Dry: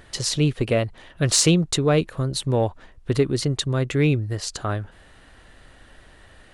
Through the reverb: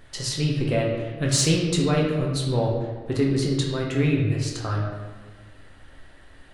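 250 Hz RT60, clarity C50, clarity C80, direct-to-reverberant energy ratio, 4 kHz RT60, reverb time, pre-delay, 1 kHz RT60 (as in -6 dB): 1.7 s, 2.0 dB, 4.5 dB, -2.5 dB, 0.95 s, 1.5 s, 8 ms, 1.4 s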